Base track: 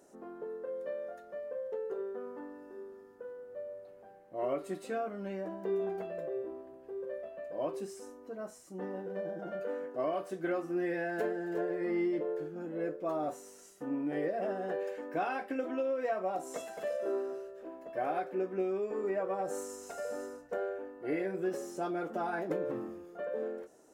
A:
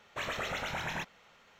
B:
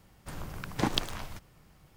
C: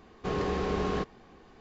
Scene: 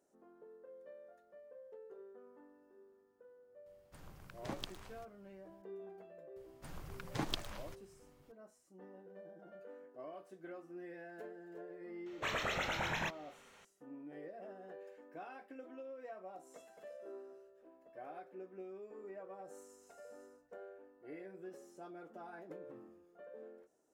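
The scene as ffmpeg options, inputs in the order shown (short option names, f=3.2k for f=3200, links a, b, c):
-filter_complex "[2:a]asplit=2[a][b];[0:a]volume=-16dB[c];[b]flanger=delay=0.4:depth=8.6:regen=-30:speed=1.9:shape=triangular[d];[1:a]highshelf=f=9.3k:g=-3.5[e];[a]atrim=end=1.96,asetpts=PTS-STARTPTS,volume=-15.5dB,afade=t=in:d=0.004:c=hsin,afade=t=out:st=1.956:d=0.004:c=hsin,adelay=3660[f];[d]atrim=end=1.96,asetpts=PTS-STARTPTS,volume=-5.5dB,afade=t=in:d=0.004:c=hsin,afade=t=out:st=1.956:d=0.004:c=hsin,adelay=6360[g];[e]atrim=end=1.59,asetpts=PTS-STARTPTS,volume=-1dB,afade=t=in:d=0.004:c=hsin,afade=t=out:st=1.586:d=0.004:c=hsin,adelay=12060[h];[c][f][g][h]amix=inputs=4:normalize=0"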